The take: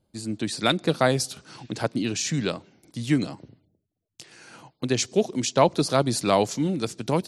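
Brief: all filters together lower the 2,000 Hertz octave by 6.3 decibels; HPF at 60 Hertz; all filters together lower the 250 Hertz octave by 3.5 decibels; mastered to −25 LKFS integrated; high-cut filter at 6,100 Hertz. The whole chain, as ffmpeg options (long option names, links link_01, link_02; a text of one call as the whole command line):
ffmpeg -i in.wav -af "highpass=60,lowpass=6100,equalizer=frequency=250:width_type=o:gain=-4.5,equalizer=frequency=2000:width_type=o:gain=-8.5,volume=2dB" out.wav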